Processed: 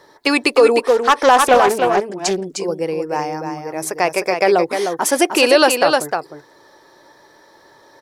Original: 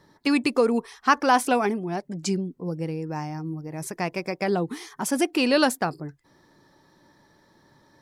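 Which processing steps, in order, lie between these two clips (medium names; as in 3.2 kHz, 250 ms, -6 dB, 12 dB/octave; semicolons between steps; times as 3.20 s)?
resonant low shelf 310 Hz -12 dB, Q 1.5; wavefolder -8 dBFS; on a send: delay 306 ms -6.5 dB; on the sum: loudness maximiser +11.5 dB; 0.82–2.44 s: loudspeaker Doppler distortion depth 0.23 ms; trim -1 dB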